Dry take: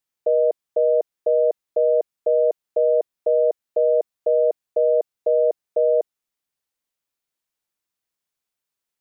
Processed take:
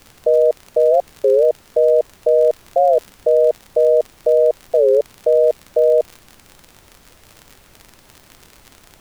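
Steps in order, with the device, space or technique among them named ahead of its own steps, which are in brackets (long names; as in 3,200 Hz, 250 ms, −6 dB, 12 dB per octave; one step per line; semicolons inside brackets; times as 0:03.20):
warped LP (wow of a warped record 33 1/3 rpm, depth 250 cents; surface crackle 57 per second −30 dBFS; pink noise bed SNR 32 dB)
level +5 dB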